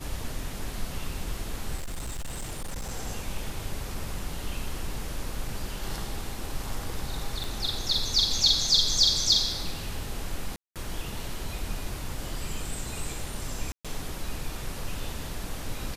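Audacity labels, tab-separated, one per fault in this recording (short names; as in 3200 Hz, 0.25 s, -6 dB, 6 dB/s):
1.760000	2.920000	clipped -30 dBFS
7.440000	7.440000	pop
10.560000	10.760000	gap 0.197 s
13.720000	13.850000	gap 0.126 s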